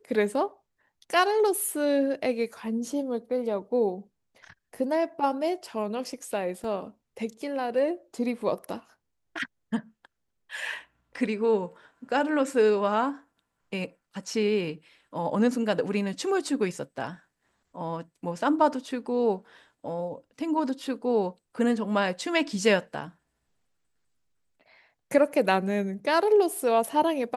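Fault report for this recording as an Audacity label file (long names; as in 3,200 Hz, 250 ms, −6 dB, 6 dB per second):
6.640000	6.640000	drop-out 2.8 ms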